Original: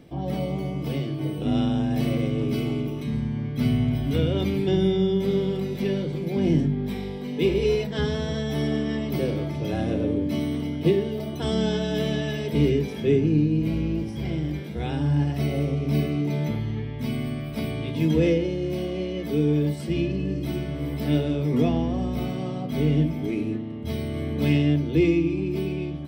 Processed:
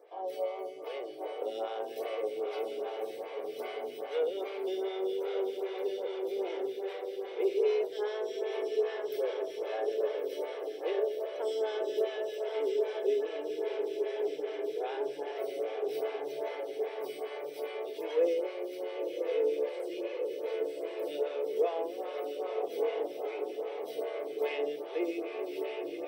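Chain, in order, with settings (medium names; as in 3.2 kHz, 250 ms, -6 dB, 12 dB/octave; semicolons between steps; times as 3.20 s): elliptic high-pass 430 Hz, stop band 50 dB; echo that smears into a reverb 1090 ms, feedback 63%, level -4 dB; in parallel at 0 dB: gain riding within 4 dB 2 s; on the sum: tilt shelf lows +5 dB, about 810 Hz; lamp-driven phase shifter 2.5 Hz; trim -8.5 dB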